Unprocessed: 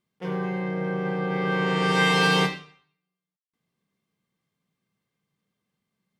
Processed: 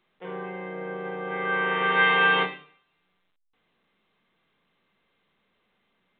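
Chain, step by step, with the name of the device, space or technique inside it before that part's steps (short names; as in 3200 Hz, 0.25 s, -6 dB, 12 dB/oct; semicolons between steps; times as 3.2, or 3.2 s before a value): notches 50/100/150/200/250/300 Hz; 1.25–2.43 dynamic EQ 1600 Hz, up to +7 dB, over -36 dBFS, Q 0.96; telephone (BPF 300–3600 Hz; gain -3 dB; A-law 64 kbps 8000 Hz)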